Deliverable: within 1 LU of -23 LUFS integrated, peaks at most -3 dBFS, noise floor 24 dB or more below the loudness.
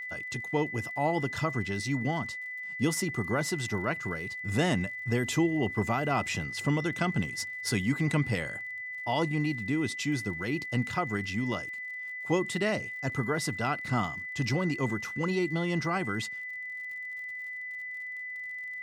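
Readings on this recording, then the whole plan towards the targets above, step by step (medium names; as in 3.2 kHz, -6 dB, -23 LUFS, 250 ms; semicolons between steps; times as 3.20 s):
tick rate 48 per s; steady tone 2 kHz; tone level -36 dBFS; loudness -31.0 LUFS; peak level -15.0 dBFS; loudness target -23.0 LUFS
-> de-click; band-stop 2 kHz, Q 30; trim +8 dB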